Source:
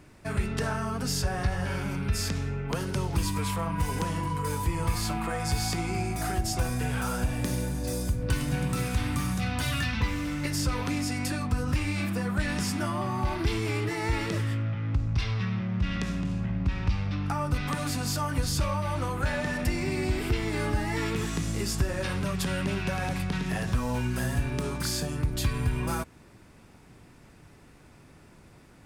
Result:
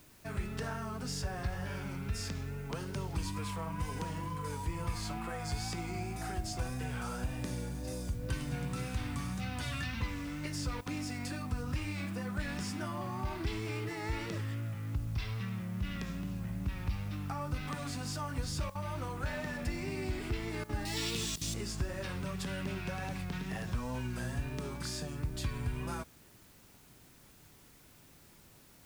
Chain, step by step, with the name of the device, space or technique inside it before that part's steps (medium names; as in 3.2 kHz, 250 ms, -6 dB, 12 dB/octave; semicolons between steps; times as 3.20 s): worn cassette (low-pass 9.4 kHz; wow and flutter; level dips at 10.81/18.70/20.64/21.36 s, 51 ms -16 dB; white noise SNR 25 dB); 20.85–21.54 s: resonant high shelf 2.5 kHz +11.5 dB, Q 1.5; trim -8.5 dB